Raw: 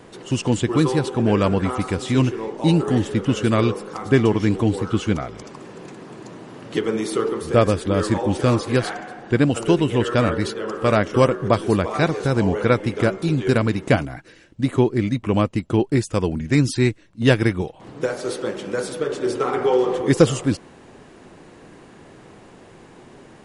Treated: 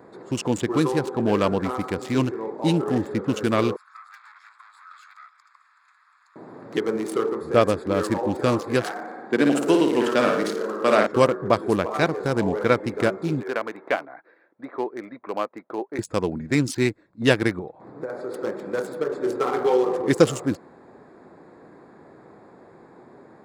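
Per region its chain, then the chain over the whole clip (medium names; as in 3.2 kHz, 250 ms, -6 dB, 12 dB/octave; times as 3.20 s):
3.76–6.36 s: valve stage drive 28 dB, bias 0.75 + elliptic high-pass 1.2 kHz, stop band 60 dB
8.91–11.07 s: high-pass 180 Hz 24 dB/octave + flutter echo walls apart 9.6 m, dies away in 0.73 s
13.43–15.99 s: band-pass 550–3100 Hz + distance through air 170 m
17.59–18.34 s: treble shelf 3.8 kHz -7 dB + band-stop 3 kHz, Q 8.3 + compression, threshold -24 dBFS
whole clip: local Wiener filter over 15 samples; high-pass 280 Hz 6 dB/octave; treble shelf 8.2 kHz +5.5 dB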